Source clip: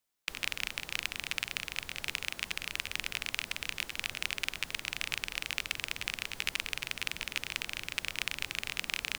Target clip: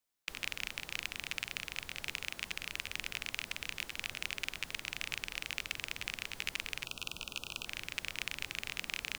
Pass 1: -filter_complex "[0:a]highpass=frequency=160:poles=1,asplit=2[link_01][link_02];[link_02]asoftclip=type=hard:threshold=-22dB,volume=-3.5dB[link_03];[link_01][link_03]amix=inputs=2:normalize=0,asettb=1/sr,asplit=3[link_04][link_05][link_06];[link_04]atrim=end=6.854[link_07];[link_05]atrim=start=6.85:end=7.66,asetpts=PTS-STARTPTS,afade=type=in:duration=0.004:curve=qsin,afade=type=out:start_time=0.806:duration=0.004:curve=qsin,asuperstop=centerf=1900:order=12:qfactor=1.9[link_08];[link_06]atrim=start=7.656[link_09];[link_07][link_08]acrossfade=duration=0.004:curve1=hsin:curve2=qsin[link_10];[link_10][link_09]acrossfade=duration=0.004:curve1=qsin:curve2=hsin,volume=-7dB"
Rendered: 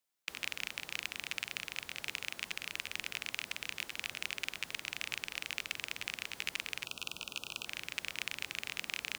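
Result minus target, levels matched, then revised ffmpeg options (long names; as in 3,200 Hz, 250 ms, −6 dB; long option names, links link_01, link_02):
125 Hz band −5.0 dB
-filter_complex "[0:a]asplit=2[link_01][link_02];[link_02]asoftclip=type=hard:threshold=-22dB,volume=-3.5dB[link_03];[link_01][link_03]amix=inputs=2:normalize=0,asettb=1/sr,asplit=3[link_04][link_05][link_06];[link_04]atrim=end=6.854[link_07];[link_05]atrim=start=6.85:end=7.66,asetpts=PTS-STARTPTS,afade=type=in:duration=0.004:curve=qsin,afade=type=out:start_time=0.806:duration=0.004:curve=qsin,asuperstop=centerf=1900:order=12:qfactor=1.9[link_08];[link_06]atrim=start=7.656[link_09];[link_07][link_08]acrossfade=duration=0.004:curve1=hsin:curve2=qsin[link_10];[link_10][link_09]acrossfade=duration=0.004:curve1=qsin:curve2=hsin,volume=-7dB"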